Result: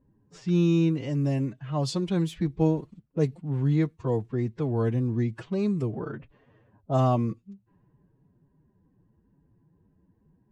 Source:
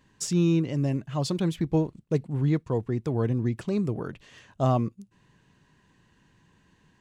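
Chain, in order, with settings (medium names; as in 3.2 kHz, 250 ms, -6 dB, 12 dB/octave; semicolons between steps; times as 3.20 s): level-controlled noise filter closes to 490 Hz, open at -22 dBFS; time stretch by phase-locked vocoder 1.5×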